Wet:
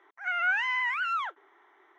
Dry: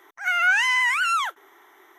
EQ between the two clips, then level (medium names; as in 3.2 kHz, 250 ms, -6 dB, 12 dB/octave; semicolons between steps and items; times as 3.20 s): dynamic bell 360 Hz, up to +6 dB, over -45 dBFS, Q 1; band-pass 280–2600 Hz; -7.0 dB